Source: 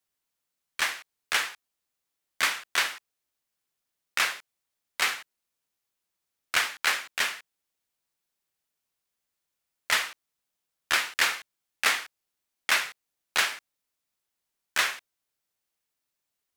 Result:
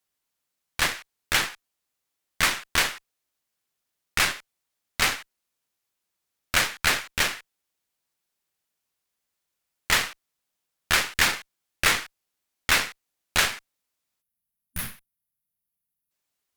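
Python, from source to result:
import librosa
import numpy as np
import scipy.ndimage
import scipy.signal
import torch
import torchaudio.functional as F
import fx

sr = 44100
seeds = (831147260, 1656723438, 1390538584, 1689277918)

y = fx.cheby_harmonics(x, sr, harmonics=(8,), levels_db=(-15,), full_scale_db=-10.0)
y = fx.spec_box(y, sr, start_s=14.22, length_s=1.89, low_hz=250.0, high_hz=9500.0, gain_db=-16)
y = y * librosa.db_to_amplitude(2.0)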